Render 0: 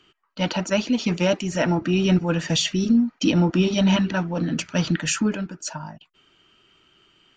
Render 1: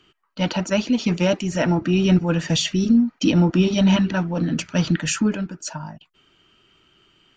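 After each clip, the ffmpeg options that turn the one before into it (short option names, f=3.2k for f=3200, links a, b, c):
-af "lowshelf=f=240:g=4"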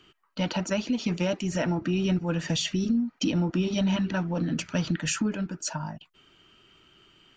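-af "acompressor=threshold=-27dB:ratio=2.5"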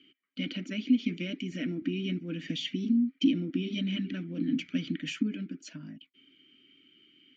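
-filter_complex "[0:a]asplit=3[a][b][c];[a]bandpass=f=270:t=q:w=8,volume=0dB[d];[b]bandpass=f=2.29k:t=q:w=8,volume=-6dB[e];[c]bandpass=f=3.01k:t=q:w=8,volume=-9dB[f];[d][e][f]amix=inputs=3:normalize=0,volume=7.5dB"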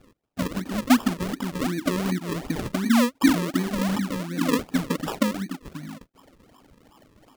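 -af "acrusher=samples=41:mix=1:aa=0.000001:lfo=1:lforange=41:lforate=2.7,volume=6.5dB"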